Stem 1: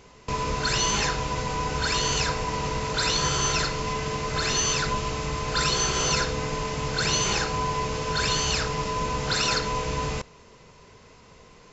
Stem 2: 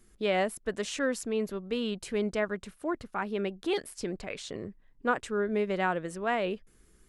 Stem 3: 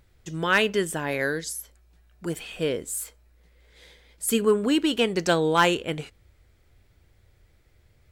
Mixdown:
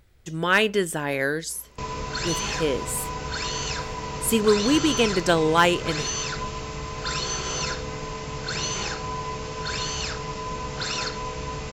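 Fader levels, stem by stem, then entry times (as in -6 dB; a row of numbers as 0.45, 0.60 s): -4.0 dB, off, +1.5 dB; 1.50 s, off, 0.00 s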